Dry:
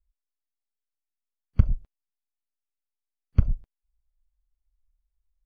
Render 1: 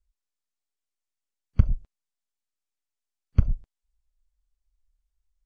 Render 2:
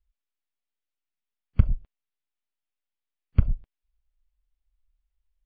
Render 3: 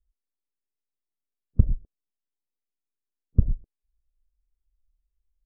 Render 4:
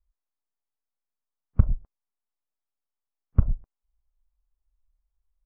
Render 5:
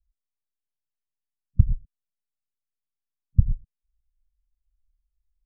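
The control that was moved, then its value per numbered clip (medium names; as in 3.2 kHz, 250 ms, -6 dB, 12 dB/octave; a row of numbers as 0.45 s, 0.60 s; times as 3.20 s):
resonant low-pass, frequency: 7.8 kHz, 3.1 kHz, 400 Hz, 1.1 kHz, 150 Hz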